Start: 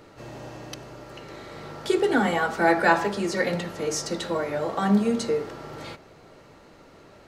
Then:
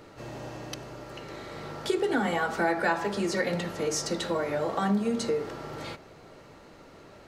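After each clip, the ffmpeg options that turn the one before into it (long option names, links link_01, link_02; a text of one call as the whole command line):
ffmpeg -i in.wav -af "acompressor=threshold=-25dB:ratio=2.5" out.wav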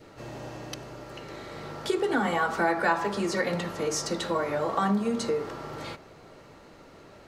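ffmpeg -i in.wav -af "adynamicequalizer=threshold=0.00631:dfrequency=1100:dqfactor=2.7:tfrequency=1100:tqfactor=2.7:attack=5:release=100:ratio=0.375:range=3:mode=boostabove:tftype=bell" out.wav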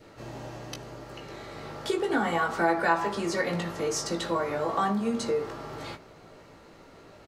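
ffmpeg -i in.wav -filter_complex "[0:a]asplit=2[link_01][link_02];[link_02]adelay=18,volume=-6.5dB[link_03];[link_01][link_03]amix=inputs=2:normalize=0,volume=-1.5dB" out.wav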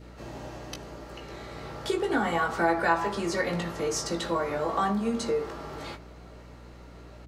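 ffmpeg -i in.wav -af "aeval=exprs='val(0)+0.00447*(sin(2*PI*60*n/s)+sin(2*PI*2*60*n/s)/2+sin(2*PI*3*60*n/s)/3+sin(2*PI*4*60*n/s)/4+sin(2*PI*5*60*n/s)/5)':channel_layout=same" out.wav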